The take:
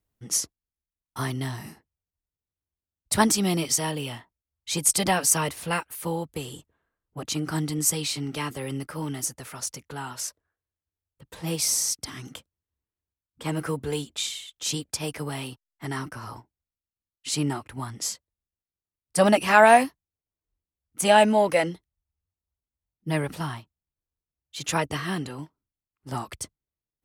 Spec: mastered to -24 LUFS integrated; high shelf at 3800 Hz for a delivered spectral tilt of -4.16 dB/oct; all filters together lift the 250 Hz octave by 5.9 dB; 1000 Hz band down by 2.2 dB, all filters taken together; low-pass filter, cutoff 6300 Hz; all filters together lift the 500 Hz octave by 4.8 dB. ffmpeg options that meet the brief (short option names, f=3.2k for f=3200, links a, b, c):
-af "lowpass=6.3k,equalizer=f=250:t=o:g=6,equalizer=f=500:t=o:g=8.5,equalizer=f=1k:t=o:g=-8.5,highshelf=f=3.8k:g=5.5,volume=-1dB"